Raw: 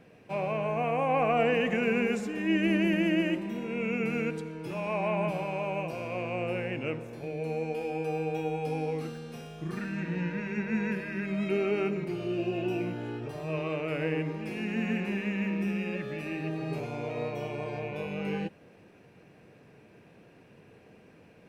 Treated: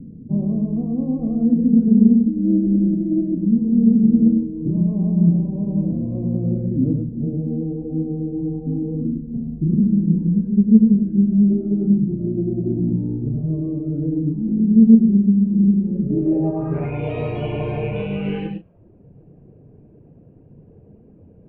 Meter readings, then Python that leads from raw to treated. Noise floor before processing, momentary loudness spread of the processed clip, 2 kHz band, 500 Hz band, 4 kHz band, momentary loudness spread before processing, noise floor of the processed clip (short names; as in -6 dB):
-56 dBFS, 12 LU, under -10 dB, +1.0 dB, n/a, 10 LU, -48 dBFS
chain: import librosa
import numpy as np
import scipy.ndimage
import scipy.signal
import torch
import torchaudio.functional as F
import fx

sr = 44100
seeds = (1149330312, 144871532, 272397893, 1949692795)

y = fx.dereverb_blind(x, sr, rt60_s=0.87)
y = fx.hum_notches(y, sr, base_hz=60, count=4)
y = fx.env_lowpass(y, sr, base_hz=480.0, full_db=-30.5)
y = fx.tilt_eq(y, sr, slope=-4.5)
y = fx.rider(y, sr, range_db=5, speed_s=0.5)
y = fx.filter_sweep_lowpass(y, sr, from_hz=240.0, to_hz=3100.0, start_s=16.05, end_s=17.01, q=4.6)
y = fx.doubler(y, sr, ms=35.0, db=-10.5)
y = y + 10.0 ** (-4.5 / 20.0) * np.pad(y, (int(104 * sr / 1000.0), 0))[:len(y)]
y = fx.doppler_dist(y, sr, depth_ms=0.14)
y = y * librosa.db_to_amplitude(1.0)